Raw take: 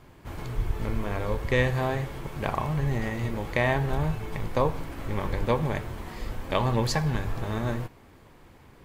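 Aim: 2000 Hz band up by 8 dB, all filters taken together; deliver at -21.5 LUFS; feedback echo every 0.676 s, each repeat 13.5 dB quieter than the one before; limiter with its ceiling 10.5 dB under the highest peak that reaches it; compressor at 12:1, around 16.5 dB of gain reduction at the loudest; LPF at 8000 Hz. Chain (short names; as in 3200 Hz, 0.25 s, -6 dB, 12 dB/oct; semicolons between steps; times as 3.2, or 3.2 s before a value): LPF 8000 Hz; bell 2000 Hz +9 dB; compressor 12:1, threshold -32 dBFS; limiter -27.5 dBFS; feedback echo 0.676 s, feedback 21%, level -13.5 dB; gain +17.5 dB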